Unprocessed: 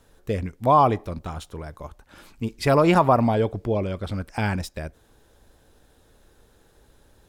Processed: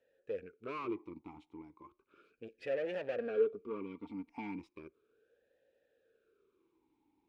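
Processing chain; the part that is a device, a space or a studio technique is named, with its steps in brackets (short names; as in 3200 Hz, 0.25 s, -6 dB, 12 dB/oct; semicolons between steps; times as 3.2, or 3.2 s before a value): talk box (tube stage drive 24 dB, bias 0.75; vowel sweep e-u 0.35 Hz); high shelf 7600 Hz -5.5 dB; 3.18–4.59 comb 4.3 ms, depth 68%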